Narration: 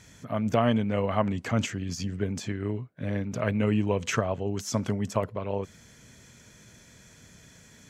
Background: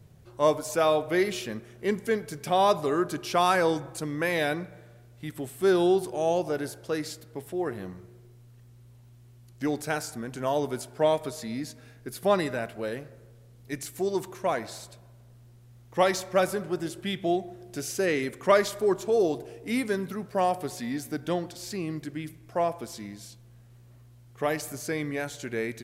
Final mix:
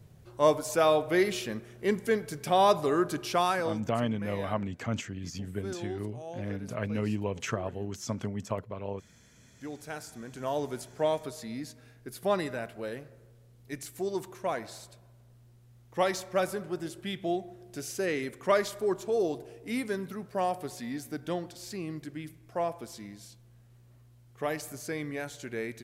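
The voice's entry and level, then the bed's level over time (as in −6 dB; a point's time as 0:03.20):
3.35 s, −6.0 dB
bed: 0:03.26 −0.5 dB
0:04.11 −16.5 dB
0:09.26 −16.5 dB
0:10.53 −4.5 dB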